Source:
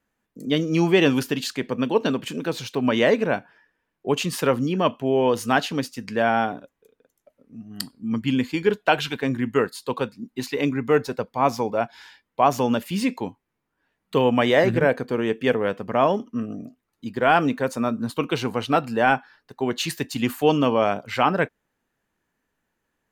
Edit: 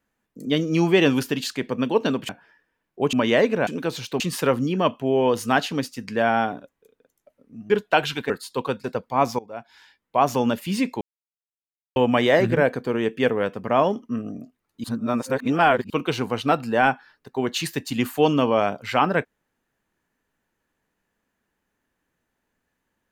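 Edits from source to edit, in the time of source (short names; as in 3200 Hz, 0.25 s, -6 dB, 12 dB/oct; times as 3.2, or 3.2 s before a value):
2.29–2.82 swap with 3.36–4.2
7.7–8.65 cut
9.25–9.62 cut
10.16–11.08 cut
11.63–12.57 fade in, from -20.5 dB
13.25–14.2 mute
17.08–18.14 reverse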